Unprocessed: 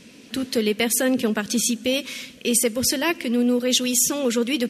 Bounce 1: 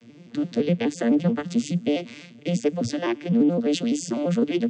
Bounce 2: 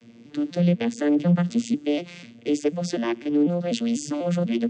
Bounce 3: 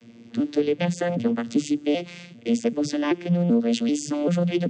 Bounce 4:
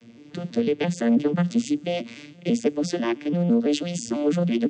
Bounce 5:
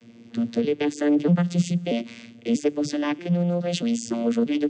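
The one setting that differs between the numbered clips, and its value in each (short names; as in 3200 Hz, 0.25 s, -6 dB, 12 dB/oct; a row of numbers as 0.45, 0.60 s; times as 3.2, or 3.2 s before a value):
arpeggiated vocoder, a note every: 85, 247, 388, 166, 636 ms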